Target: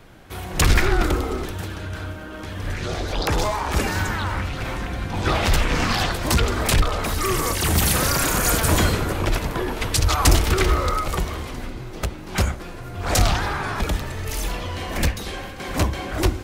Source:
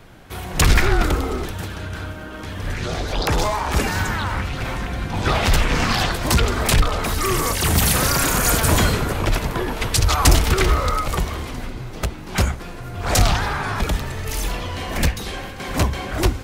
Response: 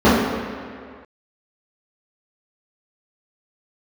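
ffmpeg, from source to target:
-filter_complex "[0:a]asplit=2[s0][s1];[1:a]atrim=start_sample=2205,asetrate=61740,aresample=44100[s2];[s1][s2]afir=irnorm=-1:irlink=0,volume=0.00596[s3];[s0][s3]amix=inputs=2:normalize=0,volume=0.794"

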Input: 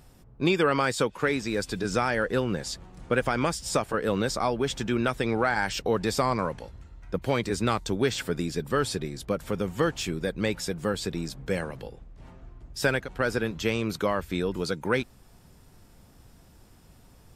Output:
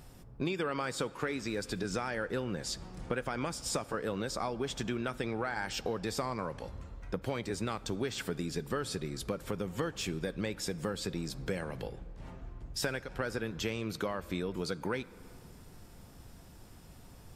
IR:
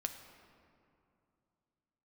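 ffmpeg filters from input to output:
-filter_complex "[0:a]acompressor=threshold=0.02:ratio=4,asplit=2[s0][s1];[1:a]atrim=start_sample=2205[s2];[s1][s2]afir=irnorm=-1:irlink=0,volume=0.501[s3];[s0][s3]amix=inputs=2:normalize=0,volume=0.794"

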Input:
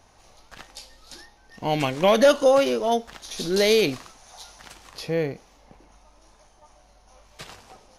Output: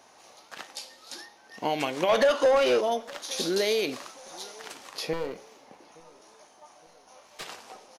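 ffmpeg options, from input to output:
-filter_complex "[0:a]highpass=280,acompressor=threshold=0.0501:ratio=6,asettb=1/sr,asplit=3[s0][s1][s2];[s0]atrim=end=5.134[s3];[s1]atrim=start=5.13:end=7.45,asetpts=PTS-STARTPTS,afade=t=in:d=0.004:c=qsin,afade=t=out:st=2.316:d=0.004:c=qsin,aeval=exprs='clip(val(0),-1,0.0126)':c=same[s4];[s2]atrim=start=7.446[s5];[s3][s4]acrossfade=d=0.004:c1=hsin:c2=qsin[s6];[s6][s5]acrossfade=d=0.004:c1=qsin:c2=hsin,flanger=delay=7.6:depth=4.2:regen=-86:speed=0.5:shape=triangular,asettb=1/sr,asplit=3[s7][s8][s9];[s7]atrim=end=2.094[s10];[s8]atrim=start=2.09:end=2.81,asetpts=PTS-STARTPTS,afade=t=in:d=0.004:c=qsin,afade=t=out:st=0.716:d=0.004:c=qsin,asplit=2[s11][s12];[s12]highpass=f=720:p=1,volume=7.94,asoftclip=type=tanh:threshold=0.112[s13];[s11][s13]amix=inputs=2:normalize=0,lowpass=f=3000:p=1,volume=0.501[s14];[s9]atrim=start=2.806[s15];[s10][s14]acrossfade=d=0.004:c1=hsin:c2=qsin[s16];[s16][s15]acrossfade=d=0.004:c1=qsin:c2=hsin,asplit=2[s17][s18];[s18]adelay=867,lowpass=f=2000:p=1,volume=0.0668,asplit=2[s19][s20];[s20]adelay=867,lowpass=f=2000:p=1,volume=0.46,asplit=2[s21][s22];[s22]adelay=867,lowpass=f=2000:p=1,volume=0.46[s23];[s17][s19][s21][s23]amix=inputs=4:normalize=0,volume=2.24"

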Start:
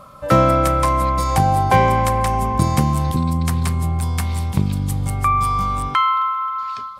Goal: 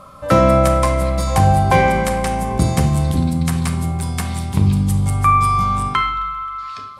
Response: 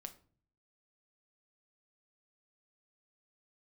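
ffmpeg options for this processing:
-filter_complex "[1:a]atrim=start_sample=2205,asetrate=22932,aresample=44100[s0];[0:a][s0]afir=irnorm=-1:irlink=0,volume=1.5"

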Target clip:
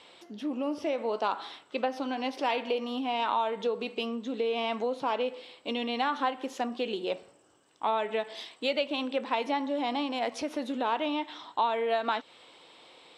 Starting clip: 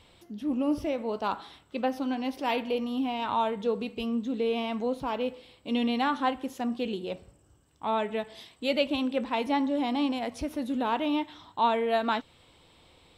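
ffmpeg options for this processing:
-af "acompressor=threshold=0.0316:ratio=6,highpass=370,lowpass=7100,volume=2"

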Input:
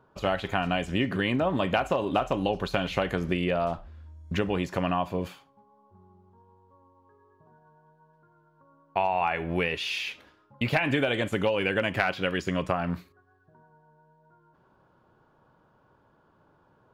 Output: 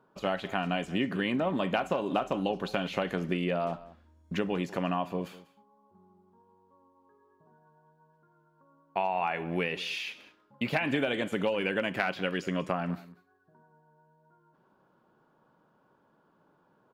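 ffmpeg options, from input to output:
-filter_complex "[0:a]lowshelf=f=130:t=q:w=1.5:g=-10,asplit=2[s0][s1];[s1]aecho=0:1:193:0.112[s2];[s0][s2]amix=inputs=2:normalize=0,volume=0.631"

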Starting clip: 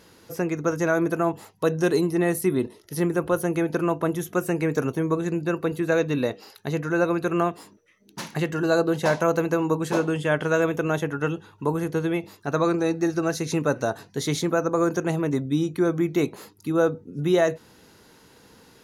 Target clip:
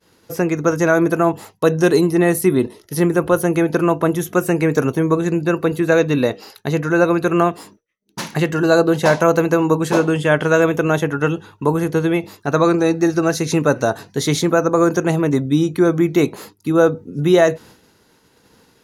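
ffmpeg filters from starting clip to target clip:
-af "agate=range=0.0224:threshold=0.00562:ratio=3:detection=peak,volume=2.37"

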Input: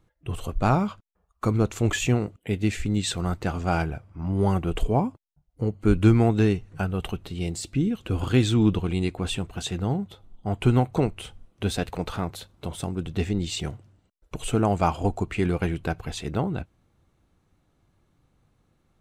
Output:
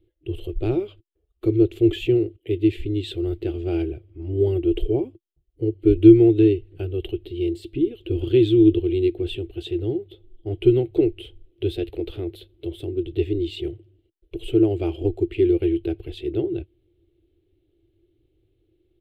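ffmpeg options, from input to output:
-af "firequalizer=gain_entry='entry(110,0);entry(200,-27);entry(340,15);entry(490,-3);entry(1000,-25);entry(2100,-9);entry(3100,1);entry(6200,-25);entry(12000,-8)':delay=0.05:min_phase=1"

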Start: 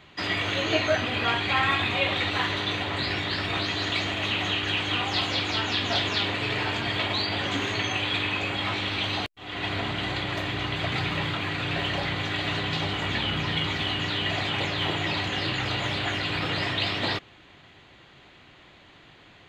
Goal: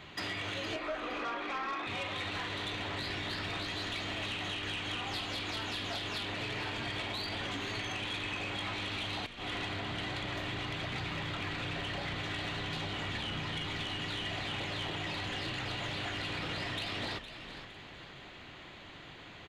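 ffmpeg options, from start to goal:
-filter_complex "[0:a]acompressor=threshold=0.0178:ratio=12,asettb=1/sr,asplit=3[s0][s1][s2];[s0]atrim=end=0.764[s3];[s1]atrim=start=0.76:end=1.87,asetpts=PTS-STARTPTS,afade=t=in:d=0.004:c=qsin,afade=t=out:st=1.106:d=0.004:c=qsin,highpass=f=310:w=0.5412,highpass=f=310:w=1.3066,equalizer=f=320:t=q:w=4:g=8,equalizer=f=550:t=q:w=4:g=4,equalizer=f=1200:t=q:w=4:g=9,equalizer=f=1800:t=q:w=4:g=-3,equalizer=f=3000:t=q:w=4:g=-7,lowpass=f=3400:w=0.5412,lowpass=f=3400:w=1.3066[s4];[s2]atrim=start=1.866[s5];[s3][s4]acrossfade=d=0.004:c1=hsin:c2=qsin[s6];[s6][s5]acrossfade=d=0.004:c1=qsin:c2=hsin,aeval=exprs='0.0708*(cos(1*acos(clip(val(0)/0.0708,-1,1)))-cos(1*PI/2))+0.0158*(cos(5*acos(clip(val(0)/0.0708,-1,1)))-cos(5*PI/2))':c=same,asplit=5[s7][s8][s9][s10][s11];[s8]adelay=462,afreqshift=-63,volume=0.282[s12];[s9]adelay=924,afreqshift=-126,volume=0.105[s13];[s10]adelay=1386,afreqshift=-189,volume=0.0385[s14];[s11]adelay=1848,afreqshift=-252,volume=0.0143[s15];[s7][s12][s13][s14][s15]amix=inputs=5:normalize=0,volume=0.596"

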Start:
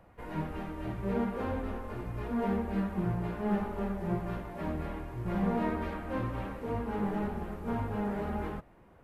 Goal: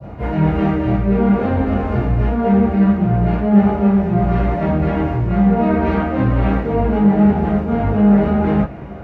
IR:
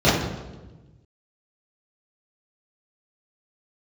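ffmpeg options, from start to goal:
-filter_complex "[0:a]areverse,acompressor=threshold=0.00891:ratio=6,areverse[s0];[1:a]atrim=start_sample=2205,atrim=end_sample=3087[s1];[s0][s1]afir=irnorm=-1:irlink=0,adynamicequalizer=threshold=0.01:dfrequency=2000:dqfactor=0.84:tfrequency=2000:tqfactor=0.84:attack=5:release=100:ratio=0.375:range=2.5:mode=boostabove:tftype=bell"

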